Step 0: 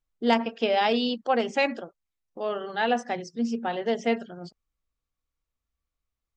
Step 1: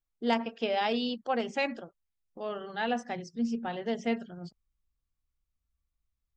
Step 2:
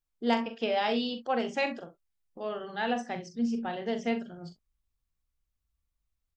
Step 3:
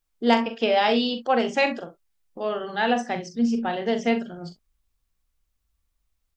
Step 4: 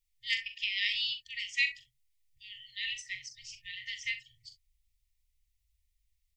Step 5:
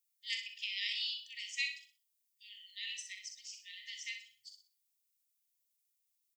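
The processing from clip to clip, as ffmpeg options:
ffmpeg -i in.wav -af "asubboost=boost=2.5:cutoff=240,volume=-5.5dB" out.wav
ffmpeg -i in.wav -af "aecho=1:1:42|64:0.355|0.15" out.wav
ffmpeg -i in.wav -af "equalizer=frequency=100:width=1:gain=-4.5,volume=8dB" out.wav
ffmpeg -i in.wav -af "afftfilt=real='re*(1-between(b*sr/4096,130,1800))':imag='im*(1-between(b*sr/4096,130,1800))':win_size=4096:overlap=0.75,volume=-2.5dB" out.wav
ffmpeg -i in.wav -af "aderivative,aecho=1:1:62|124|186|248:0.398|0.131|0.0434|0.0143,volume=1dB" out.wav

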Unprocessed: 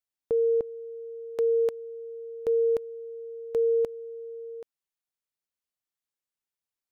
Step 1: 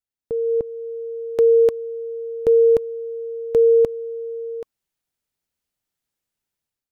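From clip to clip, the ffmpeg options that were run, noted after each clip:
ffmpeg -i in.wav -af "lowshelf=frequency=300:gain=9,bandreject=frequency=1100:width=13,dynaudnorm=framelen=440:gausssize=3:maxgain=11dB,volume=-3.5dB" out.wav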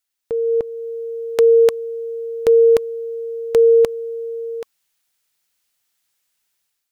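ffmpeg -i in.wav -af "tiltshelf=frequency=710:gain=-8,volume=5.5dB" out.wav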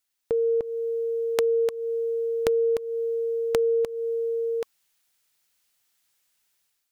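ffmpeg -i in.wav -af "acompressor=threshold=-21dB:ratio=10" out.wav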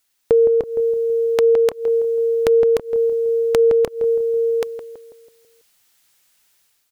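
ffmpeg -i in.wav -filter_complex "[0:a]asoftclip=type=hard:threshold=-7.5dB,asplit=2[link_01][link_02];[link_02]adelay=164,lowpass=frequency=960:poles=1,volume=-8.5dB,asplit=2[link_03][link_04];[link_04]adelay=164,lowpass=frequency=960:poles=1,volume=0.53,asplit=2[link_05][link_06];[link_06]adelay=164,lowpass=frequency=960:poles=1,volume=0.53,asplit=2[link_07][link_08];[link_08]adelay=164,lowpass=frequency=960:poles=1,volume=0.53,asplit=2[link_09][link_10];[link_10]adelay=164,lowpass=frequency=960:poles=1,volume=0.53,asplit=2[link_11][link_12];[link_12]adelay=164,lowpass=frequency=960:poles=1,volume=0.53[link_13];[link_01][link_03][link_05][link_07][link_09][link_11][link_13]amix=inputs=7:normalize=0,alimiter=level_in=11.5dB:limit=-1dB:release=50:level=0:latency=1,volume=-1dB" out.wav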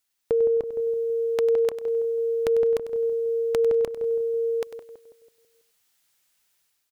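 ffmpeg -i in.wav -af "aecho=1:1:98|196:0.251|0.0402,volume=-8.5dB" out.wav

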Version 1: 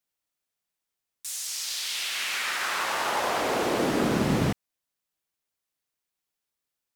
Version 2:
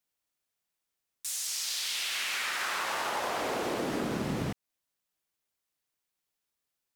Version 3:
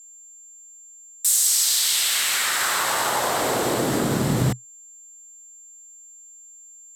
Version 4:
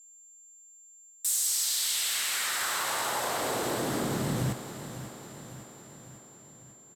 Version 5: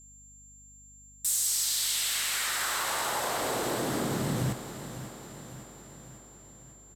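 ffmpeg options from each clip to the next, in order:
ffmpeg -i in.wav -af "acompressor=threshold=-29dB:ratio=6" out.wav
ffmpeg -i in.wav -af "aeval=exprs='val(0)+0.001*sin(2*PI*7300*n/s)':channel_layout=same,equalizer=frequency=125:width_type=o:width=0.33:gain=10,equalizer=frequency=2500:width_type=o:width=0.33:gain=-5,equalizer=frequency=4000:width_type=o:width=0.33:gain=3,equalizer=frequency=8000:width_type=o:width=0.33:gain=11,equalizer=frequency=12500:width_type=o:width=0.33:gain=11,volume=9dB" out.wav
ffmpeg -i in.wav -filter_complex "[0:a]asoftclip=type=tanh:threshold=-10dB,asplit=2[link_01][link_02];[link_02]aecho=0:1:551|1102|1653|2204|2755|3306:0.251|0.146|0.0845|0.049|0.0284|0.0165[link_03];[link_01][link_03]amix=inputs=2:normalize=0,volume=-8dB" out.wav
ffmpeg -i in.wav -af "aeval=exprs='val(0)+0.00141*(sin(2*PI*50*n/s)+sin(2*PI*2*50*n/s)/2+sin(2*PI*3*50*n/s)/3+sin(2*PI*4*50*n/s)/4+sin(2*PI*5*50*n/s)/5)':channel_layout=same" out.wav

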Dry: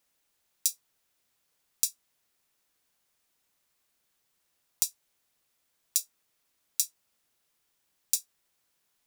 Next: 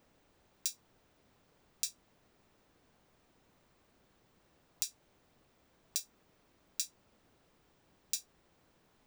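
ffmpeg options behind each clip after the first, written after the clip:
ffmpeg -i in.wav -af "equalizer=frequency=13000:width=0.52:gain=-14,alimiter=limit=-17dB:level=0:latency=1:release=137,tiltshelf=frequency=970:gain=8,volume=12.5dB" out.wav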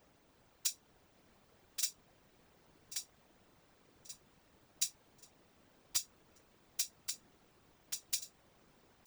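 ffmpeg -i in.wav -af "aecho=1:1:1133|2266|3399|4532:0.501|0.16|0.0513|0.0164,aeval=exprs='(mod(8.91*val(0)+1,2)-1)/8.91':channel_layout=same,afftfilt=real='hypot(re,im)*cos(2*PI*random(0))':imag='hypot(re,im)*sin(2*PI*random(1))':win_size=512:overlap=0.75,volume=7.5dB" out.wav

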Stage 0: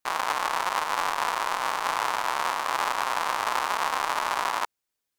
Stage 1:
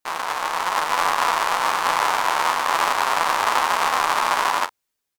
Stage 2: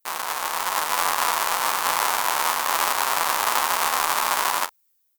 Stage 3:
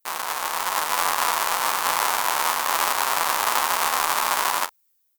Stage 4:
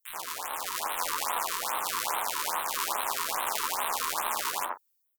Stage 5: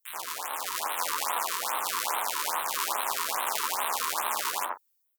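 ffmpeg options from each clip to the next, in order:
ffmpeg -i in.wav -filter_complex "[0:a]dynaudnorm=framelen=280:gausssize=5:maxgain=6.5dB,asplit=2[link_01][link_02];[link_02]aecho=0:1:12|44:0.501|0.188[link_03];[link_01][link_03]amix=inputs=2:normalize=0" out.wav
ffmpeg -i in.wav -af "aemphasis=mode=production:type=50fm,volume=-3.5dB" out.wav
ffmpeg -i in.wav -af anull out.wav
ffmpeg -i in.wav -filter_complex "[0:a]acrossover=split=180|1700[link_01][link_02][link_03];[link_01]adelay=30[link_04];[link_02]adelay=80[link_05];[link_04][link_05][link_03]amix=inputs=3:normalize=0,afftfilt=real='re*(1-between(b*sr/1024,620*pow(6000/620,0.5+0.5*sin(2*PI*2.4*pts/sr))/1.41,620*pow(6000/620,0.5+0.5*sin(2*PI*2.4*pts/sr))*1.41))':imag='im*(1-between(b*sr/1024,620*pow(6000/620,0.5+0.5*sin(2*PI*2.4*pts/sr))/1.41,620*pow(6000/620,0.5+0.5*sin(2*PI*2.4*pts/sr))*1.41))':win_size=1024:overlap=0.75,volume=-6.5dB" out.wav
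ffmpeg -i in.wav -af "lowshelf=frequency=150:gain=-9.5,volume=1dB" out.wav

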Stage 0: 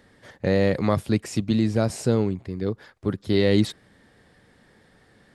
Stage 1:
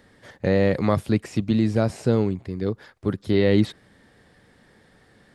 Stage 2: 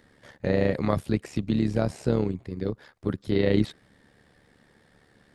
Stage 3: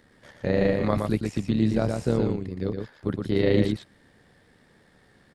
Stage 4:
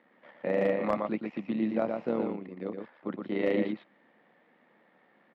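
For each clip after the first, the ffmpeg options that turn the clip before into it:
ffmpeg -i in.wav -filter_complex "[0:a]acrossover=split=3500[link_01][link_02];[link_02]acompressor=threshold=-44dB:ratio=4:attack=1:release=60[link_03];[link_01][link_03]amix=inputs=2:normalize=0,volume=1dB" out.wav
ffmpeg -i in.wav -af "tremolo=f=72:d=0.667,volume=-1dB" out.wav
ffmpeg -i in.wav -af "aecho=1:1:118:0.596" out.wav
ffmpeg -i in.wav -af "highpass=frequency=240:width=0.5412,highpass=frequency=240:width=1.3066,equalizer=frequency=280:width_type=q:width=4:gain=-5,equalizer=frequency=410:width_type=q:width=4:gain=-9,equalizer=frequency=1600:width_type=q:width=4:gain=-8,lowpass=frequency=2500:width=0.5412,lowpass=frequency=2500:width=1.3066,volume=17dB,asoftclip=hard,volume=-17dB" out.wav

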